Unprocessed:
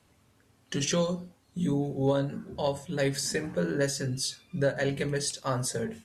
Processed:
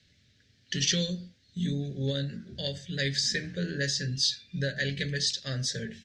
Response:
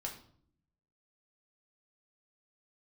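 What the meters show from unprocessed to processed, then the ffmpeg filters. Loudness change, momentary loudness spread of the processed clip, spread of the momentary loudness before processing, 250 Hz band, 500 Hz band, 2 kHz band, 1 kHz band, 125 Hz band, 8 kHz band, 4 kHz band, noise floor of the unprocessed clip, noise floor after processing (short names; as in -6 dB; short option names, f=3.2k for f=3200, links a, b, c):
0.0 dB, 9 LU, 5 LU, -3.0 dB, -8.5 dB, +2.5 dB, -18.0 dB, 0.0 dB, 0.0 dB, +7.0 dB, -65 dBFS, -66 dBFS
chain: -af "firequalizer=gain_entry='entry(170,0);entry(290,-7);entry(590,-9);entry(940,-29);entry(1700,4);entry(2600,1);entry(3700,10);entry(5700,5);entry(9800,-19)':delay=0.05:min_phase=1"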